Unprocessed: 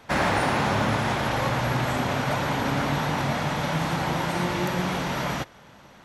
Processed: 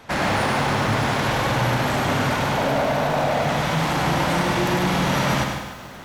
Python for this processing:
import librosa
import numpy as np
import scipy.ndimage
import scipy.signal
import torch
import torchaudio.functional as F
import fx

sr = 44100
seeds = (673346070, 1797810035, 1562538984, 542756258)

y = fx.peak_eq(x, sr, hz=630.0, db=14.0, octaves=0.63, at=(2.57, 3.44))
y = fx.rider(y, sr, range_db=10, speed_s=0.5)
y = 10.0 ** (-24.5 / 20.0) * np.tanh(y / 10.0 ** (-24.5 / 20.0))
y = fx.echo_feedback(y, sr, ms=100, feedback_pct=49, wet_db=-5.5)
y = fx.echo_crushed(y, sr, ms=148, feedback_pct=35, bits=8, wet_db=-8.5)
y = F.gain(torch.from_numpy(y), 5.5).numpy()